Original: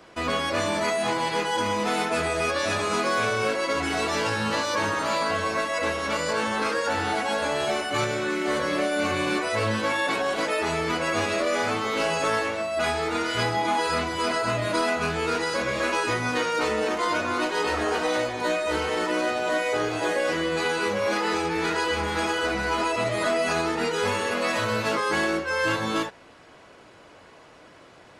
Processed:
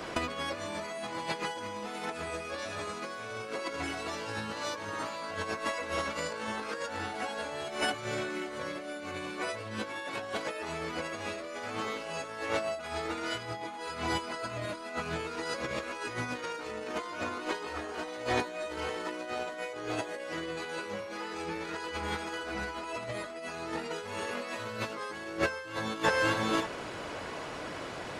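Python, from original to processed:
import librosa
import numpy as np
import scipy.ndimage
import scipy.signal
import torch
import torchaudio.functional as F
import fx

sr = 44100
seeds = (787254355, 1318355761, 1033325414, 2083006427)

y = x + 10.0 ** (-14.0 / 20.0) * np.pad(x, (int(575 * sr / 1000.0), 0))[:len(x)]
y = fx.over_compress(y, sr, threshold_db=-33.0, ratio=-0.5)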